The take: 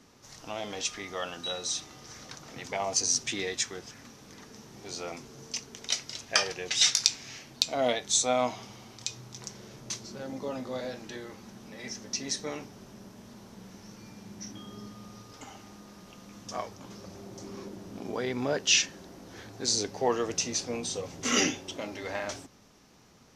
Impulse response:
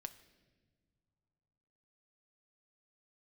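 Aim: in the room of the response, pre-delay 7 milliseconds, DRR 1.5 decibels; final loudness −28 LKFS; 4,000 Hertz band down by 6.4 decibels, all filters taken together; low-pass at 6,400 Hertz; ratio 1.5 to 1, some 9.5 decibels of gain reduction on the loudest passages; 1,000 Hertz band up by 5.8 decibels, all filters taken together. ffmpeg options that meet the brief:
-filter_complex "[0:a]lowpass=6400,equalizer=frequency=1000:width_type=o:gain=8.5,equalizer=frequency=4000:width_type=o:gain=-8,acompressor=threshold=-45dB:ratio=1.5,asplit=2[link_01][link_02];[1:a]atrim=start_sample=2205,adelay=7[link_03];[link_02][link_03]afir=irnorm=-1:irlink=0,volume=2.5dB[link_04];[link_01][link_04]amix=inputs=2:normalize=0,volume=10dB"

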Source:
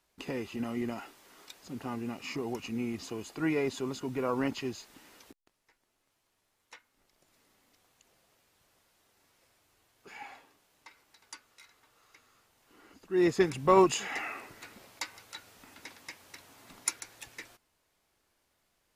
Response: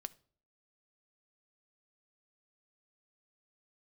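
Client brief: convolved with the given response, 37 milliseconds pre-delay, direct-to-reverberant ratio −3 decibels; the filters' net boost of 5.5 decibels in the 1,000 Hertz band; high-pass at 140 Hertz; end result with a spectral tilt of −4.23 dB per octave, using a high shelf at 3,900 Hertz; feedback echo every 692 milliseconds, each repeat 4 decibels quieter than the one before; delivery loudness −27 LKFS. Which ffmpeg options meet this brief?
-filter_complex "[0:a]highpass=140,equalizer=frequency=1000:width_type=o:gain=6.5,highshelf=frequency=3900:gain=-4.5,aecho=1:1:692|1384|2076|2768|3460|4152|4844|5536|6228:0.631|0.398|0.25|0.158|0.0994|0.0626|0.0394|0.0249|0.0157,asplit=2[link_01][link_02];[1:a]atrim=start_sample=2205,adelay=37[link_03];[link_02][link_03]afir=irnorm=-1:irlink=0,volume=6.5dB[link_04];[link_01][link_04]amix=inputs=2:normalize=0,volume=-1.5dB"

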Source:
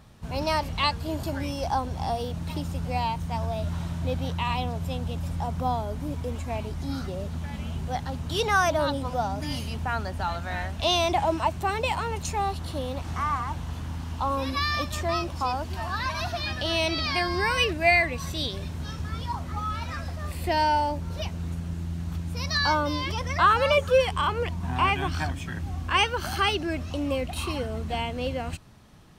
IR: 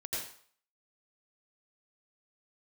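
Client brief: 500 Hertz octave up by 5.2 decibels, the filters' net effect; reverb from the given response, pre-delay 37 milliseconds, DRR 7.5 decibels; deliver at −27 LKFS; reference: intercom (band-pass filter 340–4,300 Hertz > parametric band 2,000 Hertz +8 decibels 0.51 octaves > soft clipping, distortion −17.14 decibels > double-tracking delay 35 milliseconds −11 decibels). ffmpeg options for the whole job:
-filter_complex "[0:a]equalizer=frequency=500:width_type=o:gain=7,asplit=2[link_01][link_02];[1:a]atrim=start_sample=2205,adelay=37[link_03];[link_02][link_03]afir=irnorm=-1:irlink=0,volume=-10dB[link_04];[link_01][link_04]amix=inputs=2:normalize=0,highpass=340,lowpass=4300,equalizer=frequency=2000:width_type=o:width=0.51:gain=8,asoftclip=threshold=-10.5dB,asplit=2[link_05][link_06];[link_06]adelay=35,volume=-11dB[link_07];[link_05][link_07]amix=inputs=2:normalize=0,volume=-2.5dB"

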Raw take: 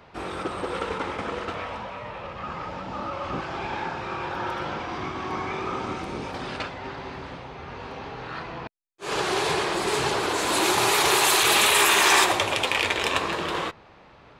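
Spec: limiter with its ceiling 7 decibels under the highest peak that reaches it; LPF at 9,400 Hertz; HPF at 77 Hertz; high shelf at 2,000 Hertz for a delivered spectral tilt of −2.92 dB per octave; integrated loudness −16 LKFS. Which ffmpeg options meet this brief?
ffmpeg -i in.wav -af "highpass=77,lowpass=9400,highshelf=frequency=2000:gain=7,volume=7dB,alimiter=limit=-3dB:level=0:latency=1" out.wav

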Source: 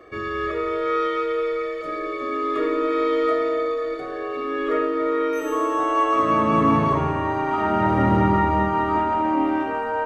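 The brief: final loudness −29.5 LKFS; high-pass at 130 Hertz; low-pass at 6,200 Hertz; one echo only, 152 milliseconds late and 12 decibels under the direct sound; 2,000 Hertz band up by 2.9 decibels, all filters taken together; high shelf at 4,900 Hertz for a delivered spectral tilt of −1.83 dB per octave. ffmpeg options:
ffmpeg -i in.wav -af "highpass=130,lowpass=6200,equalizer=frequency=2000:width_type=o:gain=4.5,highshelf=frequency=4900:gain=-7,aecho=1:1:152:0.251,volume=-8dB" out.wav

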